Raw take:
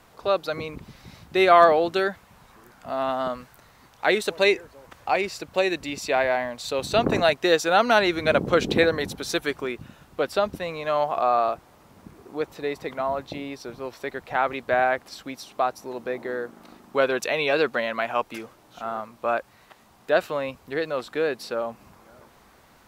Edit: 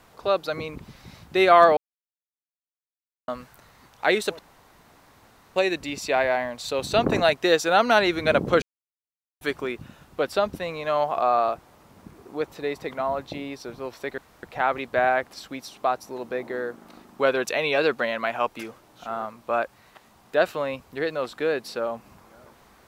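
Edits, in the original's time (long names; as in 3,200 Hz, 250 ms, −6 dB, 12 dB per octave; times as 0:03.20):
0:01.77–0:03.28: silence
0:04.39–0:05.56: fill with room tone
0:08.62–0:09.41: silence
0:14.18: splice in room tone 0.25 s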